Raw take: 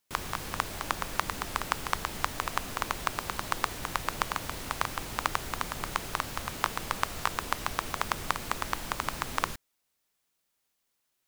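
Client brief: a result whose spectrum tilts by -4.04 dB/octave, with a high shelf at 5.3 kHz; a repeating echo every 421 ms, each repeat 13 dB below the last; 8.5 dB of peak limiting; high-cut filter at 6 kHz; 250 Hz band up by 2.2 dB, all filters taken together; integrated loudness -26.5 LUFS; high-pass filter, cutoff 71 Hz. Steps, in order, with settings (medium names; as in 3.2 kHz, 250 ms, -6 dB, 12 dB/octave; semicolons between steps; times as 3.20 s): high-pass 71 Hz; low-pass 6 kHz; peaking EQ 250 Hz +3 dB; treble shelf 5.3 kHz -5.5 dB; peak limiter -15.5 dBFS; feedback delay 421 ms, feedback 22%, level -13 dB; trim +11 dB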